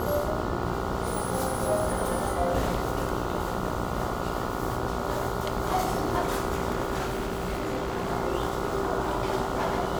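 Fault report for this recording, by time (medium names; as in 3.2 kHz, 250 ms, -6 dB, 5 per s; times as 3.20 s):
buzz 60 Hz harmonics 24 -33 dBFS
6.98–8.11 s: clipped -24 dBFS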